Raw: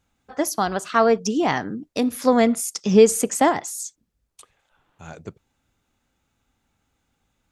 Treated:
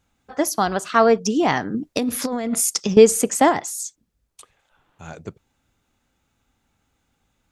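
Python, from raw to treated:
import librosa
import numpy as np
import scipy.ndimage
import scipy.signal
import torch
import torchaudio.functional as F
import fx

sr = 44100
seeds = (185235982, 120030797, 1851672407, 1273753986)

y = fx.over_compress(x, sr, threshold_db=-24.0, ratio=-1.0, at=(1.74, 2.97))
y = F.gain(torch.from_numpy(y), 2.0).numpy()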